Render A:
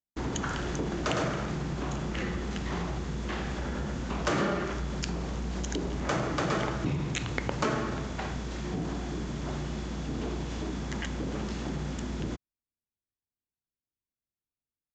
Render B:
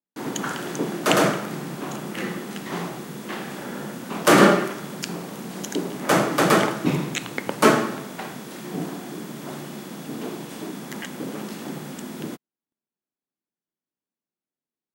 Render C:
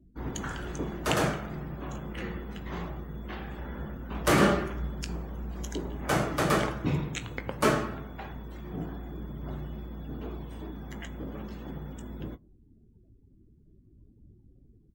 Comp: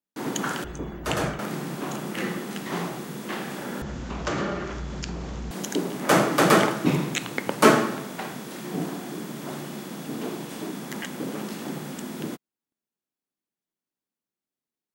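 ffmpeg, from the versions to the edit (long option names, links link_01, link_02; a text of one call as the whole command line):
ffmpeg -i take0.wav -i take1.wav -i take2.wav -filter_complex "[1:a]asplit=3[link_01][link_02][link_03];[link_01]atrim=end=0.642[link_04];[2:a]atrim=start=0.638:end=1.392[link_05];[link_02]atrim=start=1.388:end=3.822[link_06];[0:a]atrim=start=3.818:end=5.512[link_07];[link_03]atrim=start=5.508[link_08];[link_04][link_05]acrossfade=duration=0.004:curve1=hsin:curve2=hsin[link_09];[link_09][link_06]acrossfade=duration=0.004:curve1=hsin:curve2=hsin[link_10];[link_10][link_07]acrossfade=duration=0.004:curve1=hsin:curve2=hsin[link_11];[link_11][link_08]acrossfade=duration=0.004:curve1=hsin:curve2=hsin" out.wav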